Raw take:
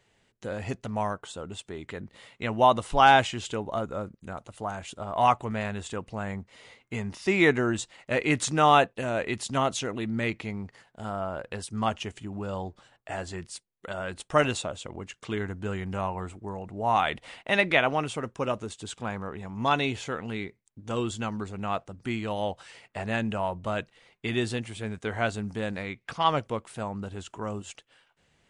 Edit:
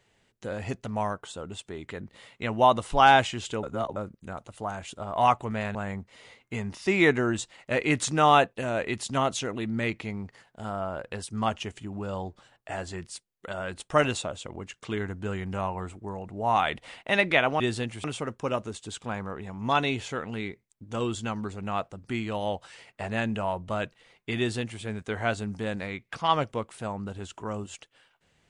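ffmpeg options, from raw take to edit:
ffmpeg -i in.wav -filter_complex "[0:a]asplit=6[link_01][link_02][link_03][link_04][link_05][link_06];[link_01]atrim=end=3.632[link_07];[link_02]atrim=start=3.628:end=3.962,asetpts=PTS-STARTPTS,areverse[link_08];[link_03]atrim=start=3.958:end=5.752[link_09];[link_04]atrim=start=6.148:end=18.002[link_10];[link_05]atrim=start=24.338:end=24.782[link_11];[link_06]atrim=start=17.998[link_12];[link_07][link_08]acrossfade=duration=0.004:curve1=hsin:curve2=hsin[link_13];[link_13][link_09]acrossfade=duration=0.004:curve1=hsin:curve2=hsin[link_14];[link_14][link_10]acrossfade=duration=0.004:curve1=hsin:curve2=hsin[link_15];[link_15][link_11]acrossfade=duration=0.004:curve1=hsin:curve2=hsin[link_16];[link_16][link_12]acrossfade=duration=0.004:curve1=hsin:curve2=hsin" out.wav

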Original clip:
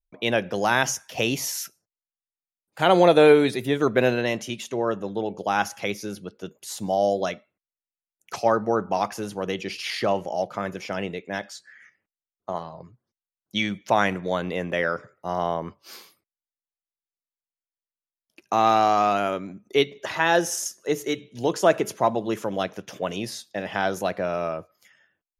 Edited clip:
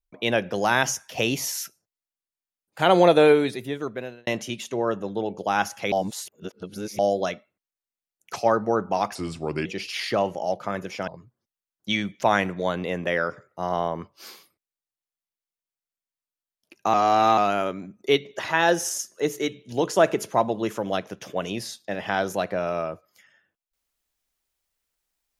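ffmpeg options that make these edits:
ffmpeg -i in.wav -filter_complex "[0:a]asplit=9[link_01][link_02][link_03][link_04][link_05][link_06][link_07][link_08][link_09];[link_01]atrim=end=4.27,asetpts=PTS-STARTPTS,afade=type=out:start_time=3.07:duration=1.2[link_10];[link_02]atrim=start=4.27:end=5.922,asetpts=PTS-STARTPTS,afade=type=in:duration=0.004:curve=hsin[link_11];[link_03]atrim=start=5.918:end=6.992,asetpts=PTS-STARTPTS,areverse[link_12];[link_04]atrim=start=6.988:end=9.154[link_13];[link_05]atrim=start=9.15:end=9.56,asetpts=PTS-STARTPTS,asetrate=35721,aresample=44100,atrim=end_sample=22322,asetpts=PTS-STARTPTS[link_14];[link_06]atrim=start=9.556:end=10.982[link_15];[link_07]atrim=start=12.738:end=18.602[link_16];[link_08]atrim=start=18.598:end=19.042,asetpts=PTS-STARTPTS,areverse[link_17];[link_09]atrim=start=19.038[link_18];[link_10][link_11]concat=n=2:v=0:a=1[link_19];[link_19][link_12]acrossfade=duration=0.004:curve1=hsin:curve2=hsin[link_20];[link_20][link_13]acrossfade=duration=0.004:curve1=hsin:curve2=hsin[link_21];[link_21][link_14]acrossfade=duration=0.004:curve1=hsin:curve2=hsin[link_22];[link_22][link_15]acrossfade=duration=0.004:curve1=hsin:curve2=hsin[link_23];[link_23][link_16]acrossfade=duration=0.004:curve1=hsin:curve2=hsin[link_24];[link_24][link_17]acrossfade=duration=0.004:curve1=hsin:curve2=hsin[link_25];[link_25][link_18]acrossfade=duration=0.004:curve1=hsin:curve2=hsin" out.wav

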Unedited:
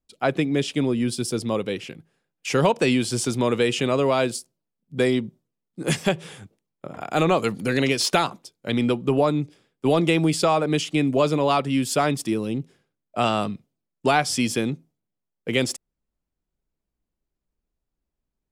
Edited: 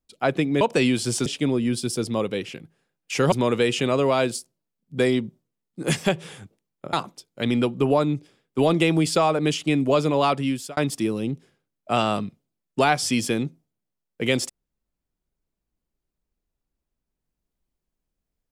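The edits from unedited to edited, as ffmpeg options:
ffmpeg -i in.wav -filter_complex "[0:a]asplit=6[link_01][link_02][link_03][link_04][link_05][link_06];[link_01]atrim=end=0.612[link_07];[link_02]atrim=start=2.668:end=3.322[link_08];[link_03]atrim=start=0.608:end=2.672[link_09];[link_04]atrim=start=3.318:end=6.932[link_10];[link_05]atrim=start=8.198:end=12.04,asetpts=PTS-STARTPTS,afade=type=out:start_time=3.482:duration=0.36[link_11];[link_06]atrim=start=12.04,asetpts=PTS-STARTPTS,afade=type=in:duration=0.004:curve=hsin[link_12];[link_07][link_08]acrossfade=duration=0.004:curve1=hsin:curve2=hsin[link_13];[link_13][link_09]acrossfade=duration=0.004:curve1=hsin:curve2=hsin[link_14];[link_14][link_10]acrossfade=duration=0.004:curve1=hsin:curve2=hsin[link_15];[link_11][link_12]concat=n=2:v=0:a=1[link_16];[link_15][link_16]acrossfade=duration=0.004:curve1=hsin:curve2=hsin" out.wav

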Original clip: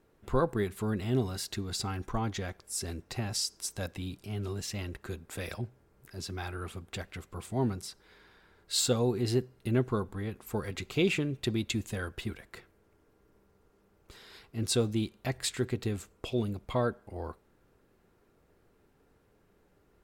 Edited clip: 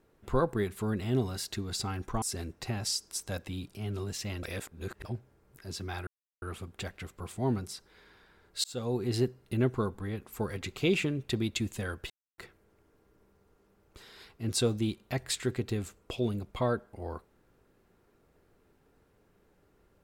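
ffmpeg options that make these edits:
ffmpeg -i in.wav -filter_complex "[0:a]asplit=8[link_01][link_02][link_03][link_04][link_05][link_06][link_07][link_08];[link_01]atrim=end=2.222[link_09];[link_02]atrim=start=2.708:end=4.922[link_10];[link_03]atrim=start=4.918:end=5.542,asetpts=PTS-STARTPTS,areverse[link_11];[link_04]atrim=start=5.538:end=6.56,asetpts=PTS-STARTPTS,afade=type=out:start_time=1.018:duration=0.004:curve=hsin,apad=pad_dur=0.35[link_12];[link_05]atrim=start=6.56:end=8.78,asetpts=PTS-STARTPTS,afade=type=in:duration=0.004:curve=hsin,afade=type=out:start_time=2.216:duration=0.004:curve=hsin[link_13];[link_06]atrim=start=8.78:end=12.24,asetpts=PTS-STARTPTS,afade=type=in:duration=0.59:curve=qsin,afade=type=out:start_time=3.456:duration=0.004:curve=hsin[link_14];[link_07]atrim=start=12.24:end=12.52,asetpts=PTS-STARTPTS,volume=0[link_15];[link_08]atrim=start=12.52,asetpts=PTS-STARTPTS,afade=type=in:duration=0.004:curve=hsin[link_16];[link_09][link_10]acrossfade=duration=0.004:curve1=hsin:curve2=hsin[link_17];[link_17][link_11]acrossfade=duration=0.004:curve1=hsin:curve2=hsin[link_18];[link_12][link_13][link_14][link_15][link_16]concat=n=5:v=0:a=1[link_19];[link_18][link_19]acrossfade=duration=0.004:curve1=hsin:curve2=hsin" out.wav

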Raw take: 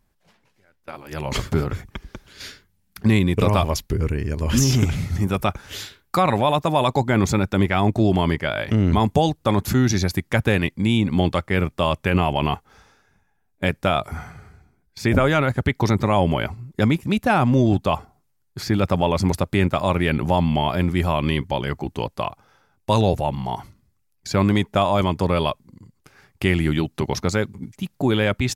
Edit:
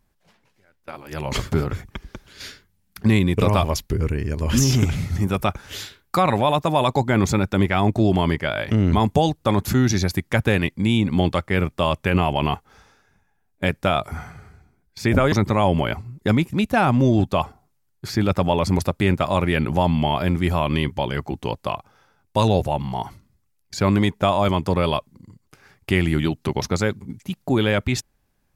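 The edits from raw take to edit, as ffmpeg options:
ffmpeg -i in.wav -filter_complex "[0:a]asplit=2[link_01][link_02];[link_01]atrim=end=15.322[link_03];[link_02]atrim=start=15.848[link_04];[link_03][link_04]acrossfade=duration=0.004:curve1=hsin:curve2=hsin" out.wav

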